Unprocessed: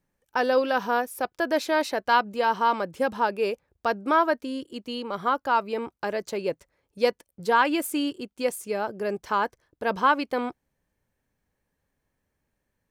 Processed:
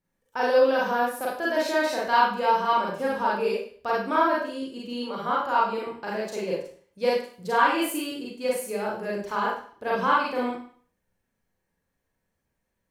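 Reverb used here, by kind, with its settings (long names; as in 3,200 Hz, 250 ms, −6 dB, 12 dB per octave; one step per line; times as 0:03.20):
four-comb reverb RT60 0.48 s, combs from 33 ms, DRR −5.5 dB
level −6.5 dB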